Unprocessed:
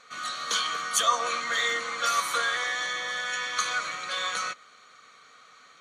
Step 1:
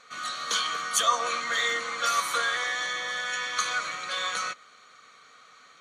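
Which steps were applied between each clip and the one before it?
no audible change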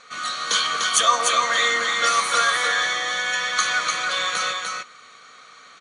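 elliptic low-pass 10 kHz, stop band 60 dB; on a send: delay 297 ms -4 dB; on the sum: trim +6.5 dB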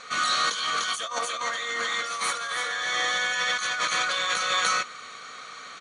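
compressor with a negative ratio -28 dBFS, ratio -1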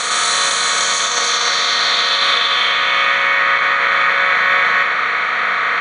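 spectral levelling over time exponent 0.2; low-pass sweep 8.2 kHz -> 2.1 kHz, 0.62–3.44 s; on a send: flutter echo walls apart 6.8 m, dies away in 0.39 s

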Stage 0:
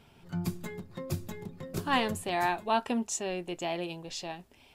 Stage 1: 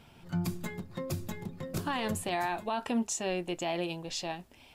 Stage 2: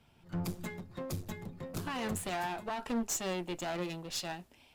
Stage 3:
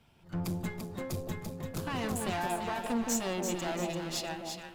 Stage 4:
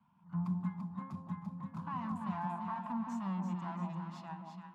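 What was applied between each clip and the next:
band-stop 410 Hz, Q 12; peak limiter -25.5 dBFS, peak gain reduction 11.5 dB; trim +2.5 dB
one-sided clip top -40.5 dBFS; three bands expanded up and down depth 40%
echo whose repeats swap between lows and highs 170 ms, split 880 Hz, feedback 66%, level -2 dB; trim +1 dB
two resonant band-passes 440 Hz, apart 2.4 oct; wow and flutter 23 cents; trim +5 dB

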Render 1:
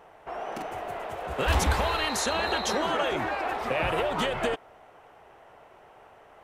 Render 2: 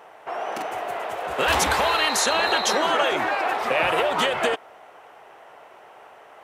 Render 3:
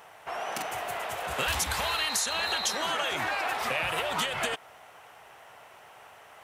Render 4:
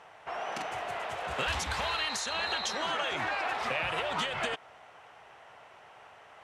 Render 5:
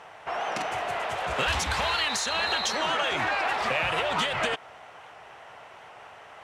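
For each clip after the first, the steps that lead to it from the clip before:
high-pass 490 Hz 6 dB/octave; trim +7.5 dB
FFT filter 120 Hz 0 dB, 360 Hz -13 dB, 11 kHz +3 dB; compression 6:1, threshold -30 dBFS, peak gain reduction 10.5 dB; trim +4 dB
distance through air 81 m; trim -1.5 dB
rattle on loud lows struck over -46 dBFS, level -38 dBFS; in parallel at -8 dB: saturation -32 dBFS, distortion -11 dB; on the sum: warped record 78 rpm, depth 100 cents; trim +3.5 dB

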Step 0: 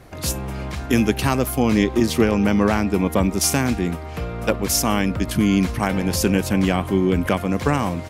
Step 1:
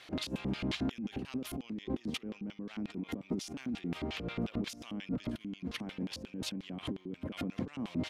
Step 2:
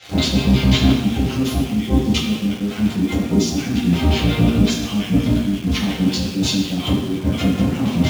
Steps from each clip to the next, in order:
compressor with a negative ratio -30 dBFS, ratio -1; LFO band-pass square 5.6 Hz 250–3300 Hz
reverberation RT60 1.1 s, pre-delay 3 ms, DRR -8.5 dB; in parallel at -4.5 dB: word length cut 6-bit, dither none; on the sum: trim +2.5 dB

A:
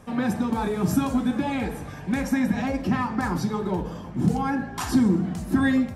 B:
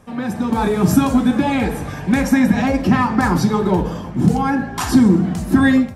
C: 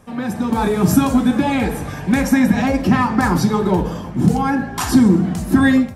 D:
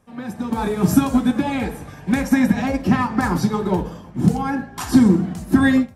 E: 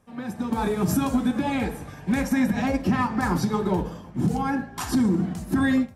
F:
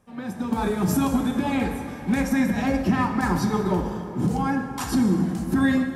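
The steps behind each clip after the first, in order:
level rider gain up to 11.5 dB
treble shelf 8.9 kHz +4.5 dB
upward expansion 1.5:1, over -31 dBFS
peak limiter -11.5 dBFS, peak gain reduction 9 dB; trim -2.5 dB
plate-style reverb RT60 3.1 s, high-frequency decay 0.6×, DRR 6.5 dB

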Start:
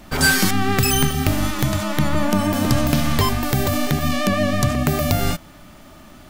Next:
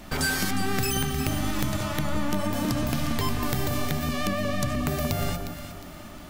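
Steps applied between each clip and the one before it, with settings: de-hum 46.26 Hz, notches 35; compression 2.5:1, threshold -28 dBFS, peak gain reduction 11 dB; echo whose repeats swap between lows and highs 179 ms, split 1.3 kHz, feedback 62%, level -5.5 dB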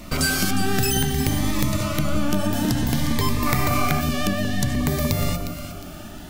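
time-frequency box 3.46–4.01 s, 640–2600 Hz +8 dB; Shepard-style phaser rising 0.56 Hz; trim +5.5 dB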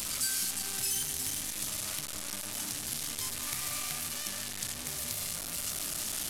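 one-bit delta coder 64 kbps, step -14.5 dBFS; pre-emphasis filter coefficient 0.9; bit crusher 11-bit; trim -7 dB

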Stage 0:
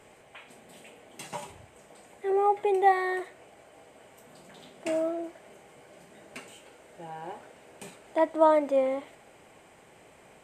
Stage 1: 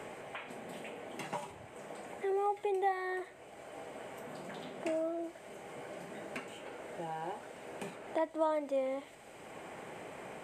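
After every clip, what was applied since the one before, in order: three bands compressed up and down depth 70%; trim -5 dB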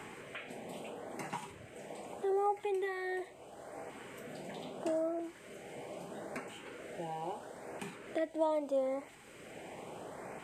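LFO notch saw up 0.77 Hz 520–3700 Hz; trim +1 dB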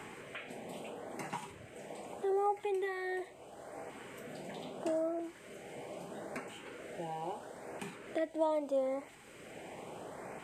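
no audible change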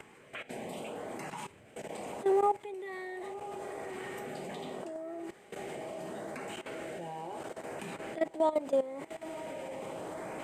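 echo that smears into a reverb 998 ms, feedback 70%, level -12 dB; level held to a coarse grid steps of 16 dB; trim +7 dB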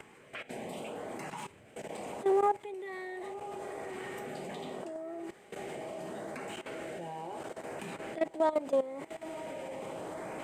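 self-modulated delay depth 0.056 ms

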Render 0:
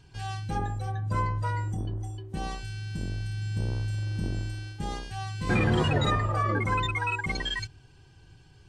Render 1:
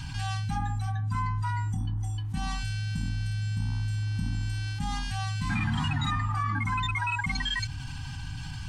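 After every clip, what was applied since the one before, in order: elliptic band-stop 270–820 Hz, stop band 40 dB; level flattener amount 70%; trim -4 dB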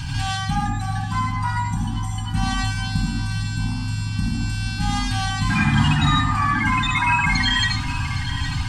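echo whose repeats swap between lows and highs 406 ms, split 900 Hz, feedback 74%, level -10 dB; on a send at -1 dB: reverberation RT60 0.35 s, pre-delay 71 ms; on the sum: trim +8 dB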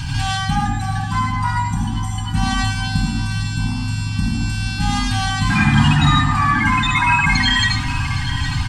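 feedback delay 100 ms, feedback 59%, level -16.5 dB; trim +3.5 dB

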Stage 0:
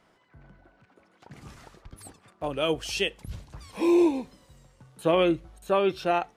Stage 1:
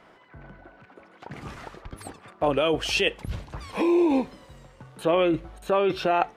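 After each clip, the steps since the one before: tone controls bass -5 dB, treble -10 dB; in parallel at +1 dB: compressor with a negative ratio -30 dBFS, ratio -0.5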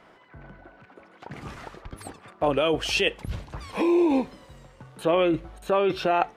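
no audible change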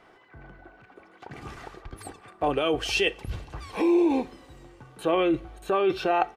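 comb 2.6 ms, depth 37%; on a send at -17.5 dB: reverberation, pre-delay 3 ms; on the sum: trim -2 dB

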